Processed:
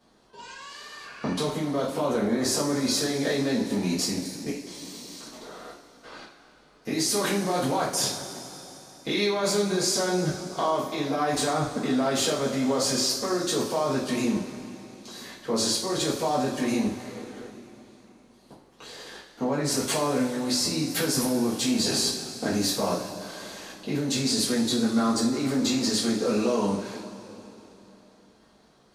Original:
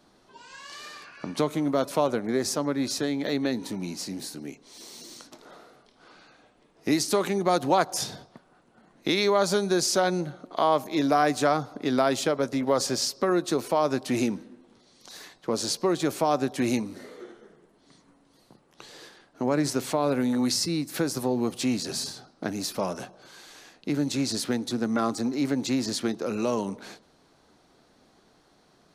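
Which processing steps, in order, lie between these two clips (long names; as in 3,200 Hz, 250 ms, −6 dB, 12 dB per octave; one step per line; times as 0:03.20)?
output level in coarse steps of 18 dB
coupled-rooms reverb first 0.38 s, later 3.5 s, from −17 dB, DRR −9 dB
level +2 dB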